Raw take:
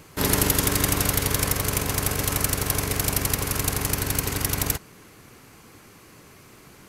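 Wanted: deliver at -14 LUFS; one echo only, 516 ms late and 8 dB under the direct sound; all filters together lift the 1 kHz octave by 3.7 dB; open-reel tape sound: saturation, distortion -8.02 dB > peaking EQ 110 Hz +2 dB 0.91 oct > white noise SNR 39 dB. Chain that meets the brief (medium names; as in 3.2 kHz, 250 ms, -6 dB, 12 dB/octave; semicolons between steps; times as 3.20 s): peaking EQ 1 kHz +4.5 dB; delay 516 ms -8 dB; saturation -23 dBFS; peaking EQ 110 Hz +2 dB 0.91 oct; white noise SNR 39 dB; trim +13 dB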